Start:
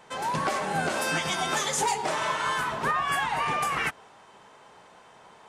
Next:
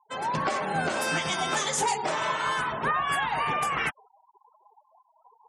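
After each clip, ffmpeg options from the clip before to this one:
-af "afftfilt=real='re*gte(hypot(re,im),0.0112)':imag='im*gte(hypot(re,im),0.0112)':win_size=1024:overlap=0.75"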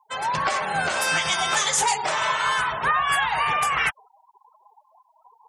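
-af "equalizer=f=270:w=0.68:g=-14,volume=7dB"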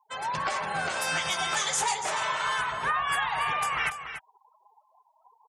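-af "aecho=1:1:287:0.316,volume=-6dB"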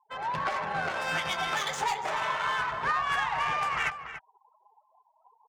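-af "adynamicsmooth=sensitivity=2.5:basefreq=2k"

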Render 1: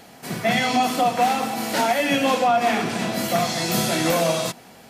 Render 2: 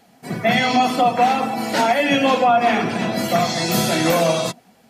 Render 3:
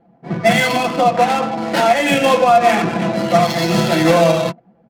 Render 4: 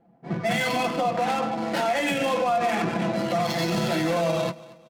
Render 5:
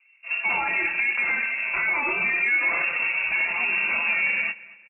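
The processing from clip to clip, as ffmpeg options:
-af "afftdn=nr=13:nf=-34,volume=3.5dB"
-af "aecho=1:1:5.9:0.62,adynamicsmooth=sensitivity=2.5:basefreq=720,volume=2dB"
-af "alimiter=limit=-10dB:level=0:latency=1:release=35,aecho=1:1:231|462|693:0.1|0.037|0.0137,volume=-6.5dB"
-filter_complex "[0:a]asplit=2[a][b];[b]adelay=24,volume=-11.5dB[c];[a][c]amix=inputs=2:normalize=0,lowpass=f=2.5k:t=q:w=0.5098,lowpass=f=2.5k:t=q:w=0.6013,lowpass=f=2.5k:t=q:w=0.9,lowpass=f=2.5k:t=q:w=2.563,afreqshift=-2900"

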